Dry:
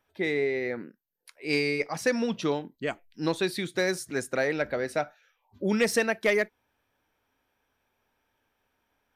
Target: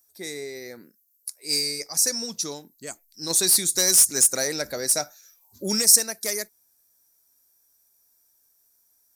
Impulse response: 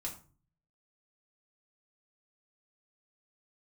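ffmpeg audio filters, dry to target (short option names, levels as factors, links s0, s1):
-filter_complex "[0:a]aexciter=amount=14.3:drive=9.4:freq=4800,asplit=3[s0][s1][s2];[s0]afade=t=out:st=3.29:d=0.02[s3];[s1]acontrast=74,afade=t=in:st=3.29:d=0.02,afade=t=out:st=5.8:d=0.02[s4];[s2]afade=t=in:st=5.8:d=0.02[s5];[s3][s4][s5]amix=inputs=3:normalize=0,volume=0.376"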